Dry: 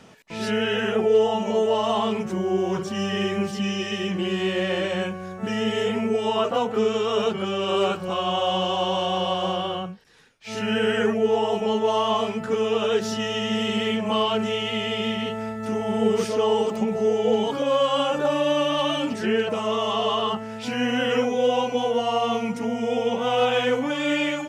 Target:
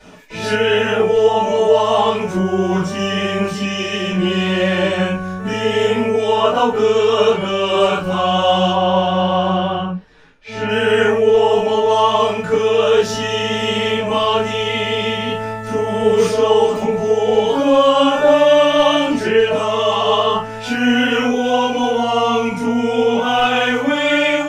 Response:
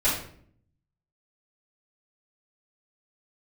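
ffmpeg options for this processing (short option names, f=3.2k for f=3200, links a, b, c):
-filter_complex "[0:a]asettb=1/sr,asplit=3[a][b][c];[a]atrim=end=8.694[d];[b]atrim=start=8.69:end=10.69,asetpts=PTS-STARTPTS,afade=t=in:d=0.004:c=qsin,afade=t=out:st=1.996:d=0.004:c=qsin,aemphasis=mode=reproduction:type=75fm[e];[c]atrim=start=10.686[f];[d][e]acrossfade=d=0.004:c1=hsin:c2=qsin[g];[g][f]acrossfade=d=0.004:c1=qsin:c2=hsin[h];[1:a]atrim=start_sample=2205,atrim=end_sample=3528[i];[h][i]afir=irnorm=-1:irlink=0,volume=-3.5dB"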